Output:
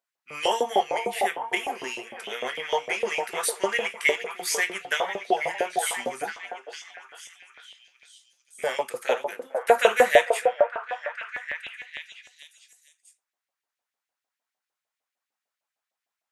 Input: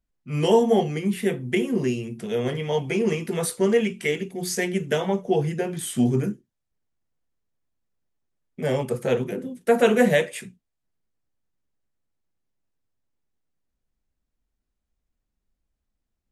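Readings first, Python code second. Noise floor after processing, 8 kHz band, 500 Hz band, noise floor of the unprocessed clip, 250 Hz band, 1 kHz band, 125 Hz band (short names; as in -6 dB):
under -85 dBFS, +2.0 dB, -2.5 dB, -81 dBFS, -17.5 dB, +5.5 dB, under -25 dB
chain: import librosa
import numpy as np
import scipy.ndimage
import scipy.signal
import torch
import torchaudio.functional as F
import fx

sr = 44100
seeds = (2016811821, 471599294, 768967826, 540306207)

y = fx.echo_stepped(x, sr, ms=453, hz=660.0, octaves=0.7, feedback_pct=70, wet_db=-2.5)
y = fx.filter_lfo_highpass(y, sr, shape='saw_up', hz=6.6, low_hz=580.0, high_hz=2400.0, q=1.8)
y = y * librosa.db_to_amplitude(1.5)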